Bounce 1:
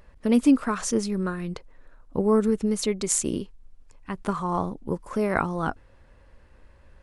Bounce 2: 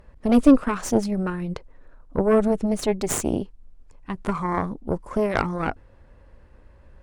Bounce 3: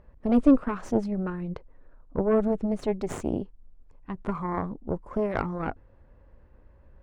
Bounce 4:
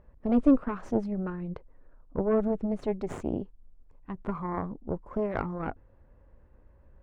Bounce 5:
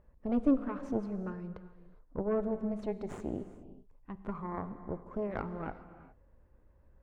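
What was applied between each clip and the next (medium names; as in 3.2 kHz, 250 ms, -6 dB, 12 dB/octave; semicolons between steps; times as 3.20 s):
Chebyshev shaper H 6 -14 dB, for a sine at -5.5 dBFS; tilt shelf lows +4 dB, about 1.4 kHz
low-pass 1.4 kHz 6 dB/octave; trim -4 dB
treble shelf 3.9 kHz -9.5 dB; trim -2.5 dB
gated-style reverb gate 440 ms flat, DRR 11 dB; trim -6 dB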